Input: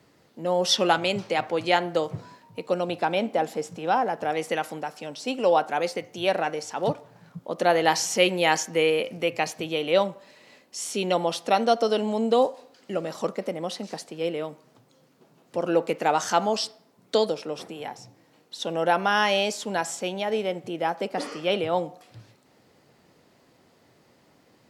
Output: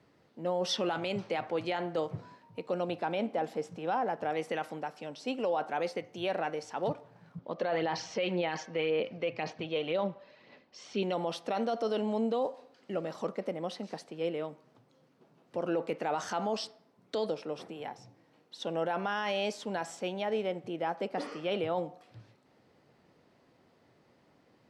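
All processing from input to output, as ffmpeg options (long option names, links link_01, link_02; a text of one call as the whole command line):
ffmpeg -i in.wav -filter_complex "[0:a]asettb=1/sr,asplit=3[link_01][link_02][link_03];[link_01]atrim=end=7.384[link_04];[link_02]atrim=start=7.38:end=11.03,asetpts=PTS-STARTPTS,afade=type=in:duration=0.004:curve=qsin,afade=type=out:start_time=3.646:duration=0.004:curve=qsin,lowpass=frequency=5200:width=0.5412,lowpass=frequency=5200:width=1.3066,aphaser=in_gain=1:out_gain=1:delay=1.9:decay=0.37:speed=1.9:type=sinusoidal[link_05];[link_03]atrim=start=11.026[link_06];[link_04][link_05]acrossfade=duration=0.004:curve1=hsin:curve2=qsin[link_07];[link_07][link_06]acrossfade=duration=0.004:curve1=qsin:curve2=hsin,aemphasis=mode=reproduction:type=50kf,bandreject=frequency=7000:width=18,alimiter=limit=-17.5dB:level=0:latency=1:release=14,volume=-5dB" out.wav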